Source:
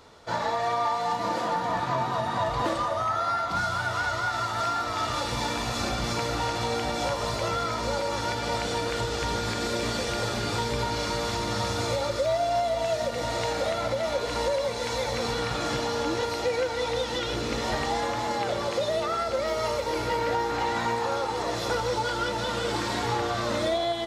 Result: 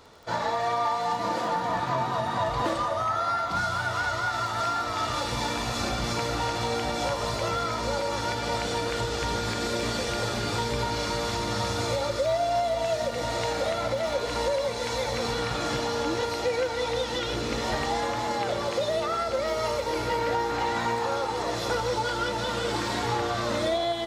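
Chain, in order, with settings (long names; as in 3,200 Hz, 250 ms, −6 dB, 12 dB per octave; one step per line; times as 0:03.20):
surface crackle 35 per second −41 dBFS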